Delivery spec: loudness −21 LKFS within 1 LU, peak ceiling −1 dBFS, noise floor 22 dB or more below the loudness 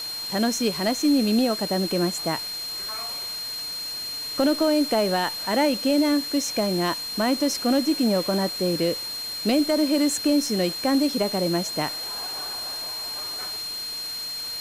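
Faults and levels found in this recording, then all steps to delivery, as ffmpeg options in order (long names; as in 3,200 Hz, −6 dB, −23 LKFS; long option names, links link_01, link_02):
interfering tone 4,200 Hz; level of the tone −30 dBFS; background noise floor −32 dBFS; target noise floor −46 dBFS; integrated loudness −24.0 LKFS; sample peak −10.5 dBFS; target loudness −21.0 LKFS
→ -af "bandreject=frequency=4200:width=30"
-af "afftdn=noise_reduction=14:noise_floor=-32"
-af "volume=3dB"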